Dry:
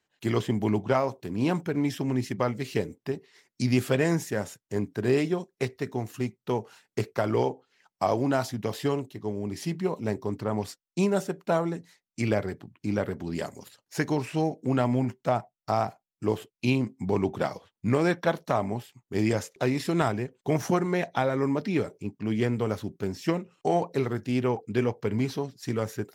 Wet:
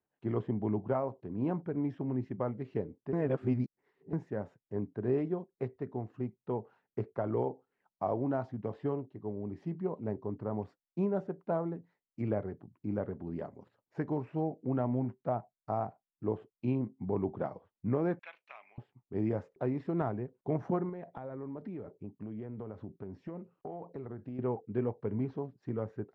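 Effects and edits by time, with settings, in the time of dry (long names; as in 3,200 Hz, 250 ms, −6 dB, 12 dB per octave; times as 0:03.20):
0:03.13–0:04.13: reverse
0:18.19–0:18.78: high-pass with resonance 2,500 Hz, resonance Q 9
0:20.89–0:24.39: downward compressor 12 to 1, threshold −30 dBFS
whole clip: low-pass filter 1,000 Hz 12 dB per octave; level −6.5 dB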